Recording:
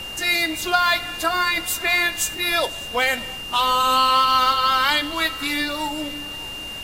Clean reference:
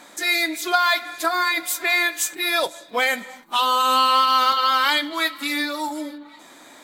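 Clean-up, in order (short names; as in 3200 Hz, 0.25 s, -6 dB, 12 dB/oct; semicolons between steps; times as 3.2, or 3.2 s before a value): notch 2800 Hz, Q 30; noise print and reduce 13 dB; inverse comb 0.6 s -21.5 dB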